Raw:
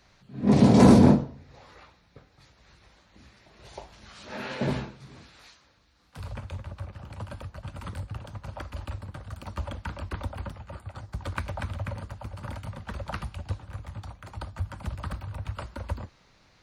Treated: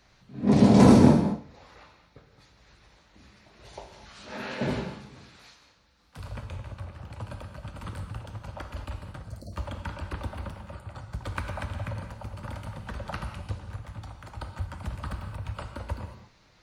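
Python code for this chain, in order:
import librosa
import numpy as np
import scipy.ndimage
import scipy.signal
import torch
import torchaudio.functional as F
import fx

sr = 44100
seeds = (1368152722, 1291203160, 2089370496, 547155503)

y = fx.spec_erase(x, sr, start_s=9.23, length_s=0.3, low_hz=720.0, high_hz=4000.0)
y = fx.rev_gated(y, sr, seeds[0], gate_ms=250, shape='flat', drr_db=5.5)
y = y * librosa.db_to_amplitude(-1.0)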